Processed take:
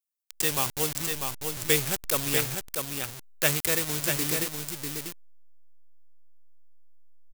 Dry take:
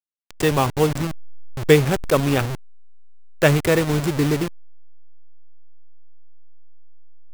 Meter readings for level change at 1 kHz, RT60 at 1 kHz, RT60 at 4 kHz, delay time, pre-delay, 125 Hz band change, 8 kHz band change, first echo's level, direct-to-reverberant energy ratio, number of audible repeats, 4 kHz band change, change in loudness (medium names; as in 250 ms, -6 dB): -10.0 dB, no reverb, no reverb, 645 ms, no reverb, -14.0 dB, +6.0 dB, -5.0 dB, no reverb, 1, -0.5 dB, -6.5 dB